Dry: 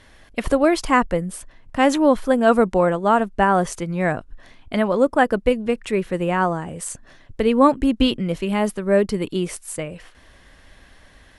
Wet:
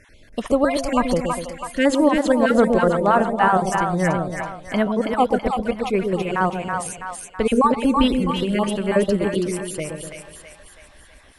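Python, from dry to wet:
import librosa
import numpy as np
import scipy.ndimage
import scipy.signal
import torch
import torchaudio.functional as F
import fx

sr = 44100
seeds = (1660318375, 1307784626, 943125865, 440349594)

y = fx.spec_dropout(x, sr, seeds[0], share_pct=32)
y = fx.echo_split(y, sr, split_hz=690.0, low_ms=123, high_ms=327, feedback_pct=52, wet_db=-4)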